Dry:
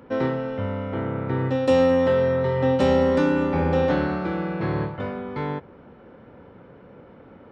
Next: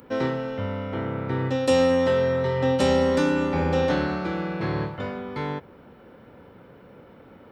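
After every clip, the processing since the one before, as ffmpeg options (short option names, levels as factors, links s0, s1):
-af "aemphasis=mode=production:type=75fm,volume=0.891"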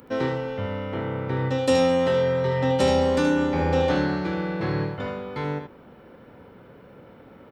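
-af "aecho=1:1:75:0.422"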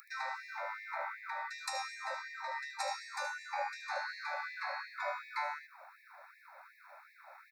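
-af "acompressor=threshold=0.0398:ratio=6,asuperstop=centerf=3100:order=12:qfactor=2.8,afftfilt=real='re*gte(b*sr/1024,550*pow(1700/550,0.5+0.5*sin(2*PI*2.7*pts/sr)))':imag='im*gte(b*sr/1024,550*pow(1700/550,0.5+0.5*sin(2*PI*2.7*pts/sr)))':win_size=1024:overlap=0.75,volume=1.19"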